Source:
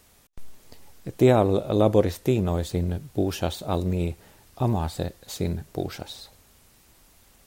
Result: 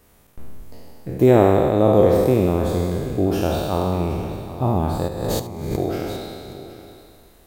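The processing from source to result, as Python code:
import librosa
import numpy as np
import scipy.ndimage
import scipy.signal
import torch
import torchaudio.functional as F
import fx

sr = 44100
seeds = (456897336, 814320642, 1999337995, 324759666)

y = fx.spec_trails(x, sr, decay_s=2.25)
y = fx.peak_eq(y, sr, hz=5400.0, db=-9.0, octaves=2.7)
y = fx.over_compress(y, sr, threshold_db=-31.0, ratio=-0.5, at=(5.07, 5.76), fade=0.02)
y = fx.echo_multitap(y, sr, ms=(73, 770), db=(-15.0, -15.5))
y = F.gain(torch.from_numpy(y), 2.0).numpy()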